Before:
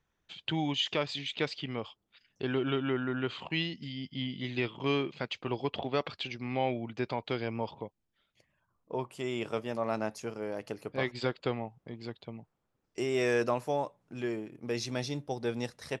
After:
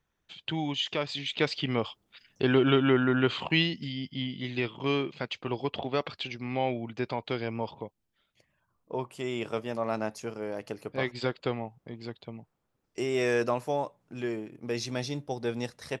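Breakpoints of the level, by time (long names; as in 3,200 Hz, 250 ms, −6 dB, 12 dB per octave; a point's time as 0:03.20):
0:00.96 0 dB
0:01.73 +8 dB
0:03.47 +8 dB
0:04.31 +1.5 dB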